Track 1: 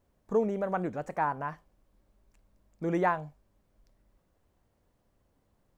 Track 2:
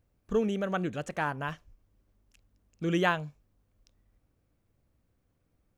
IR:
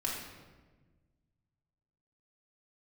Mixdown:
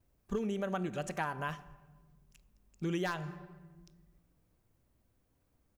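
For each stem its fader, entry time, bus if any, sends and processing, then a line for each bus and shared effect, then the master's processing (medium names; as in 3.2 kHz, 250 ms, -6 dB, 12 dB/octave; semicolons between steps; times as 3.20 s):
-11.5 dB, 0.00 s, send -12 dB, band-stop 550 Hz, Q 12
-3.0 dB, 5.1 ms, send -19 dB, treble shelf 6.4 kHz +7.5 dB; wavefolder -17.5 dBFS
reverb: on, RT60 1.3 s, pre-delay 3 ms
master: compression 6:1, threshold -31 dBFS, peak gain reduction 8 dB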